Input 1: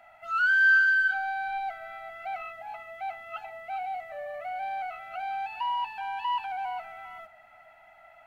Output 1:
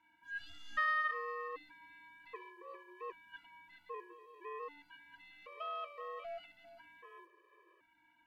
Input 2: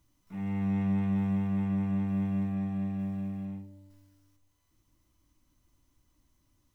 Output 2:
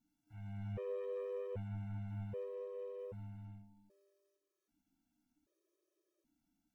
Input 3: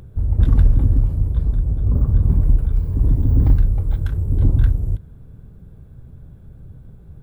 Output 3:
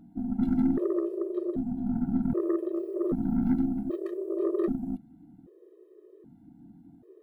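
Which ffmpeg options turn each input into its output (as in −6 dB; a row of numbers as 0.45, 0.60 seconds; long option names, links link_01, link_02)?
-af "aeval=exprs='val(0)*sin(2*PI*300*n/s)':channel_layout=same,aeval=exprs='0.708*(cos(1*acos(clip(val(0)/0.708,-1,1)))-cos(1*PI/2))+0.02*(cos(4*acos(clip(val(0)/0.708,-1,1)))-cos(4*PI/2))+0.0562*(cos(6*acos(clip(val(0)/0.708,-1,1)))-cos(6*PI/2))':channel_layout=same,afftfilt=real='re*gt(sin(2*PI*0.64*pts/sr)*(1-2*mod(floor(b*sr/1024/330),2)),0)':imag='im*gt(sin(2*PI*0.64*pts/sr)*(1-2*mod(floor(b*sr/1024/330),2)),0)':win_size=1024:overlap=0.75,volume=-7.5dB"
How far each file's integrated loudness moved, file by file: −13.5, −13.5, −10.5 LU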